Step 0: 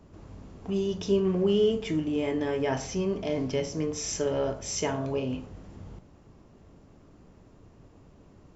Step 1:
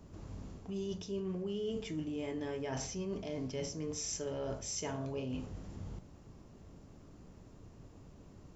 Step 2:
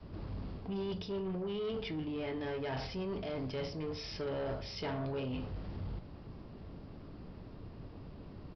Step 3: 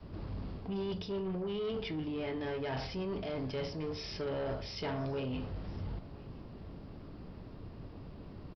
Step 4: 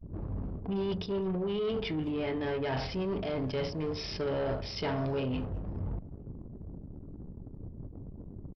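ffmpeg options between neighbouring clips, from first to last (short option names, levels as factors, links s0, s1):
-af "bass=f=250:g=3,treble=f=4000:g=6,areverse,acompressor=threshold=0.0224:ratio=6,areverse,volume=0.708"
-af "adynamicequalizer=threshold=0.00282:dfrequency=240:dqfactor=0.89:tfrequency=240:tqfactor=0.89:attack=5:release=100:ratio=0.375:range=2.5:mode=cutabove:tftype=bell,aresample=11025,asoftclip=type=tanh:threshold=0.0112,aresample=44100,volume=2.11"
-af "aecho=1:1:1013:0.075,volume=1.12"
-filter_complex "[0:a]anlmdn=0.0398,asplit=2[s0][s1];[s1]adelay=210,highpass=300,lowpass=3400,asoftclip=type=hard:threshold=0.0112,volume=0.0794[s2];[s0][s2]amix=inputs=2:normalize=0,volume=1.68"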